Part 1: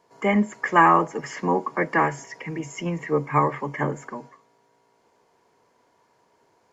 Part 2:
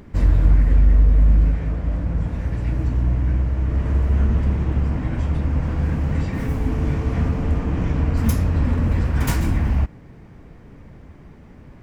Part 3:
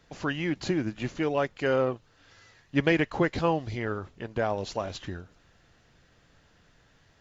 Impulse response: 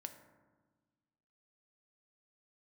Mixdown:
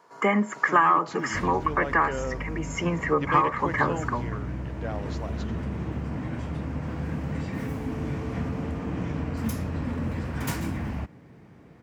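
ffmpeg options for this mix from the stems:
-filter_complex "[0:a]equalizer=f=1.3k:w=1.9:g=11,volume=2.5dB[a];[1:a]adelay=1200,volume=-4.5dB[b];[2:a]adelay=450,volume=-7.5dB[c];[a][b]amix=inputs=2:normalize=0,acompressor=threshold=-19dB:ratio=4,volume=0dB[d];[c][d]amix=inputs=2:normalize=0,highpass=120"

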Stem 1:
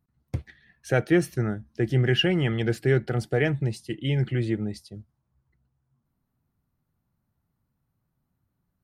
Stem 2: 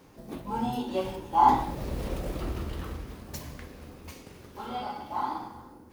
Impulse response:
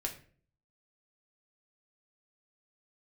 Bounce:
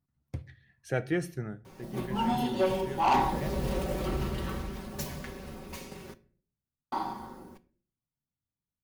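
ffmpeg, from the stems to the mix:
-filter_complex "[0:a]volume=-10dB,afade=t=out:st=1.29:d=0.44:silence=0.266073,asplit=2[a][b];[b]volume=-8.5dB[c];[1:a]aecho=1:1:5.3:0.7,asoftclip=type=tanh:threshold=-21.5dB,adelay=1650,volume=-1dB,asplit=3[d][e][f];[d]atrim=end=6.14,asetpts=PTS-STARTPTS,afade=t=out:st=6.136:d=0.004:c=hsin[g];[e]atrim=start=6.14:end=6.92,asetpts=PTS-STARTPTS,volume=0[h];[f]atrim=start=6.92,asetpts=PTS-STARTPTS,afade=t=in:d=0.004:c=hsin[i];[g][h][i]concat=n=3:v=0:a=1,asplit=2[j][k];[k]volume=-6.5dB[l];[2:a]atrim=start_sample=2205[m];[c][l]amix=inputs=2:normalize=0[n];[n][m]afir=irnorm=-1:irlink=0[o];[a][j][o]amix=inputs=3:normalize=0"

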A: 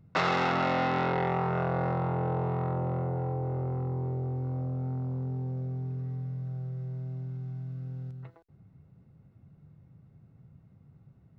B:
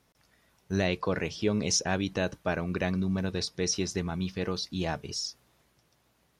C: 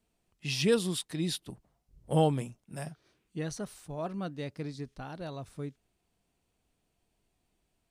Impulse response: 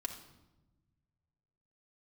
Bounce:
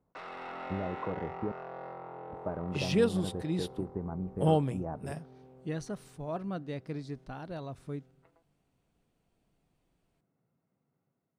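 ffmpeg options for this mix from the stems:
-filter_complex "[0:a]highpass=330,asoftclip=type=tanh:threshold=-22dB,volume=-17dB,asplit=2[a][b];[b]volume=-8.5dB[c];[1:a]lowpass=f=1.1k:w=0.5412,lowpass=f=1.1k:w=1.3066,acompressor=threshold=-30dB:ratio=6,volume=-6.5dB,asplit=3[d][e][f];[d]atrim=end=1.52,asetpts=PTS-STARTPTS,afade=t=out:st=1.516:d=0.004:c=hsin[g];[e]atrim=start=1.52:end=2.3,asetpts=PTS-STARTPTS,volume=0[h];[f]atrim=start=2.3,asetpts=PTS-STARTPTS,afade=t=in:d=0.004:c=hsin[i];[g][h][i]concat=n=3:v=0:a=1[j];[2:a]adynamicequalizer=threshold=0.00398:dfrequency=2000:dqfactor=0.7:tfrequency=2000:tqfactor=0.7:attack=5:release=100:ratio=0.375:range=3:mode=cutabove:tftype=highshelf,adelay=2300,volume=-5.5dB,asplit=2[k][l];[l]volume=-23.5dB[m];[3:a]atrim=start_sample=2205[n];[c][m]amix=inputs=2:normalize=0[o];[o][n]afir=irnorm=-1:irlink=0[p];[a][j][k][p]amix=inputs=4:normalize=0,dynaudnorm=f=180:g=5:m=5dB,highshelf=f=3.8k:g=-7"

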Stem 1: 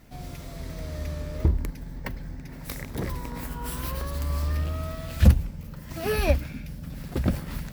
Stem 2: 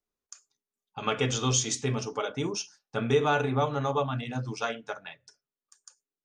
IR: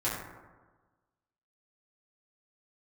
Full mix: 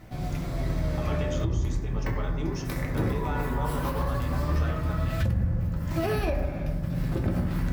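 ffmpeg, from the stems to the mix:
-filter_complex "[0:a]volume=1.5dB,asplit=2[a][b];[b]volume=-5dB[c];[1:a]alimiter=limit=-21dB:level=0:latency=1,volume=-7dB,asplit=3[d][e][f];[e]volume=-7dB[g];[f]apad=whole_len=340846[h];[a][h]sidechaincompress=threshold=-43dB:ratio=8:attack=37:release=857[i];[2:a]atrim=start_sample=2205[j];[c][g]amix=inputs=2:normalize=0[k];[k][j]afir=irnorm=-1:irlink=0[l];[i][d][l]amix=inputs=3:normalize=0,highshelf=f=3.8k:g=-8.5,alimiter=limit=-17.5dB:level=0:latency=1:release=353"

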